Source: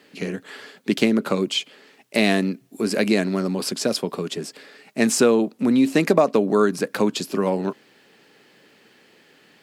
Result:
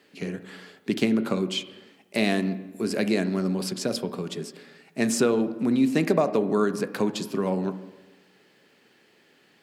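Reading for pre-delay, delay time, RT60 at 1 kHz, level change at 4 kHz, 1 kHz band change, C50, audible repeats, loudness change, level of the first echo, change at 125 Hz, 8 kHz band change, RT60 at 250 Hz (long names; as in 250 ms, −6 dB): 3 ms, no echo audible, 1.1 s, −6.0 dB, −5.5 dB, 13.5 dB, no echo audible, −4.5 dB, no echo audible, −2.0 dB, −6.0 dB, 1.2 s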